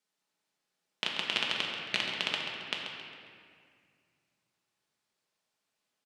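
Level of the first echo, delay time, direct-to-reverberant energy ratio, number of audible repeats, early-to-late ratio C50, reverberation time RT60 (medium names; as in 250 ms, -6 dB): -9.0 dB, 135 ms, -2.5 dB, 1, 0.5 dB, 2.1 s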